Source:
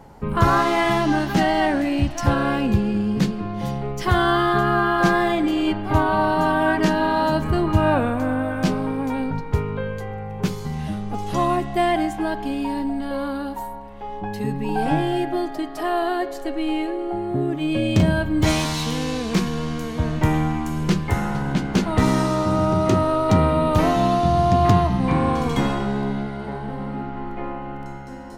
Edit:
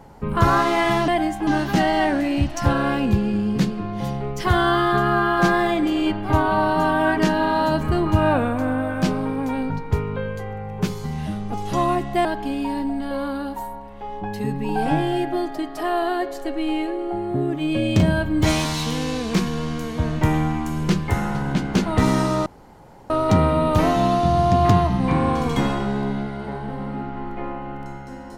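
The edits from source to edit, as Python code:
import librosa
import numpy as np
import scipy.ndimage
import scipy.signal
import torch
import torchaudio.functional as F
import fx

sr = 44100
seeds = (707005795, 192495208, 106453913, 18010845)

y = fx.edit(x, sr, fx.move(start_s=11.86, length_s=0.39, to_s=1.08),
    fx.room_tone_fill(start_s=22.46, length_s=0.64), tone=tone)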